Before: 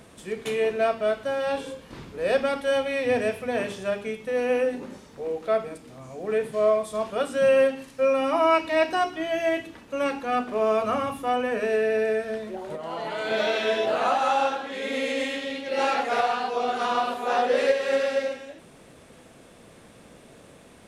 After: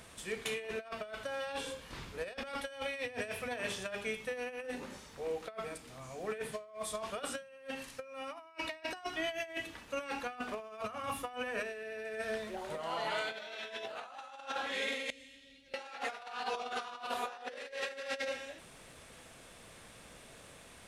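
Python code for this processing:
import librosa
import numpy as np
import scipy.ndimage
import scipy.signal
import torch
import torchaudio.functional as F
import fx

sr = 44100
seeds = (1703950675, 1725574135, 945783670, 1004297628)

y = fx.tone_stack(x, sr, knobs='10-0-1', at=(15.1, 15.74))
y = fx.peak_eq(y, sr, hz=270.0, db=-11.0, octaves=3.0)
y = fx.over_compress(y, sr, threshold_db=-35.0, ratio=-0.5)
y = y * 10.0 ** (-4.0 / 20.0)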